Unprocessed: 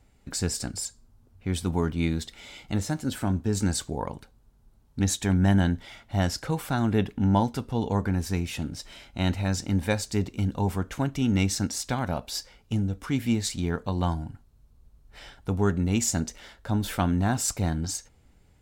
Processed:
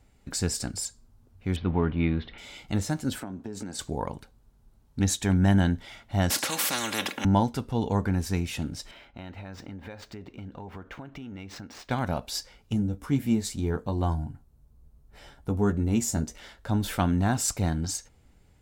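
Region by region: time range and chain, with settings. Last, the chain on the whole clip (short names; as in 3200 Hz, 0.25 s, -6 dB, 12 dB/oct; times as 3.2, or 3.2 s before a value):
1.56–2.38 G.711 law mismatch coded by mu + inverse Chebyshev low-pass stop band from 7400 Hz, stop band 50 dB
3.2–3.79 HPF 260 Hz + tilt -2 dB/oct + compressor 10:1, threshold -32 dBFS
6.3–7.25 HPF 190 Hz 24 dB/oct + comb 3.6 ms, depth 73% + spectral compressor 4:1
8.91–11.91 median filter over 5 samples + tone controls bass -7 dB, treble -13 dB + compressor 16:1, threshold -36 dBFS
12.73–16.35 bell 3200 Hz -7.5 dB 2.8 oct + doubler 14 ms -7 dB
whole clip: dry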